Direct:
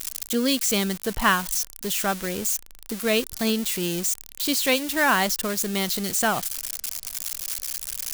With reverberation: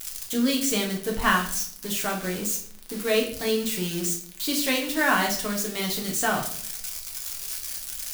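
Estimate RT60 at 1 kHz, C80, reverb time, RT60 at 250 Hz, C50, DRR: 0.50 s, 12.0 dB, 0.60 s, 0.75 s, 8.5 dB, -1.0 dB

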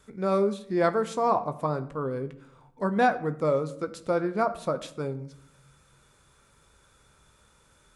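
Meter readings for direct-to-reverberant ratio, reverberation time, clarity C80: 9.5 dB, 0.70 s, 18.0 dB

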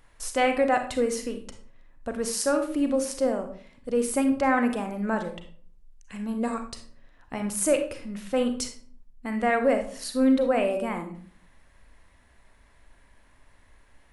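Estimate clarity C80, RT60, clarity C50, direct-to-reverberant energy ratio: 13.5 dB, 0.50 s, 8.5 dB, 6.0 dB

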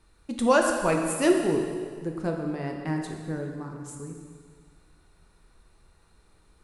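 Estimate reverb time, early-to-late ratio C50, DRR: 1.9 s, 4.0 dB, 1.5 dB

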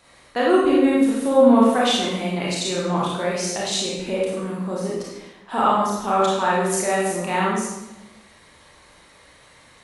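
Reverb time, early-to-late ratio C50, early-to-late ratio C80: 0.95 s, -0.5 dB, 3.0 dB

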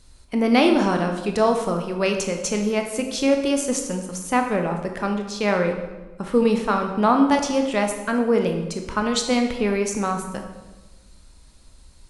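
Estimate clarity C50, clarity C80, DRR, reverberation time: 6.5 dB, 8.5 dB, 3.5 dB, 1.2 s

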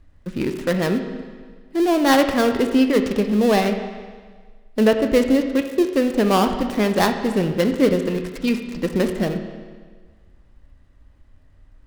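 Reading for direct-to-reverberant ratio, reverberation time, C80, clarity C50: 6.0 dB, 1.6 s, 9.0 dB, 8.0 dB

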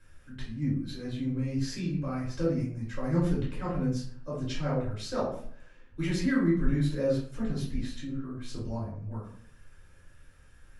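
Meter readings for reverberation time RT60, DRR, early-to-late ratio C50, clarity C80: 0.55 s, -8.0 dB, 4.0 dB, 8.5 dB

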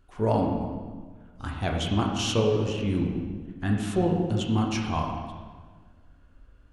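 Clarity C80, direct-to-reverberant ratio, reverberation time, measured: 4.5 dB, -0.5 dB, 1.5 s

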